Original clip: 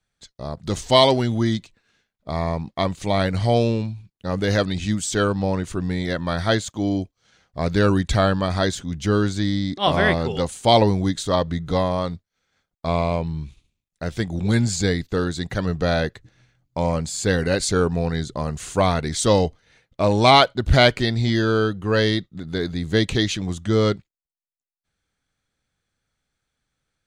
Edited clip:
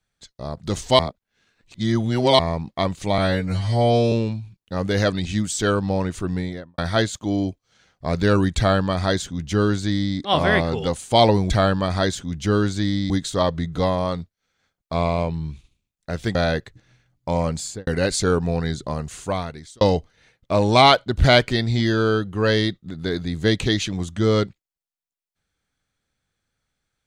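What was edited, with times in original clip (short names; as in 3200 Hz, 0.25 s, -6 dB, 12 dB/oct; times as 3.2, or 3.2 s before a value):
0.99–2.39 reverse
3.18–3.65 stretch 2×
5.84–6.31 studio fade out
8.1–9.7 copy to 11.03
14.28–15.84 cut
17.11–17.36 studio fade out
18.33–19.3 fade out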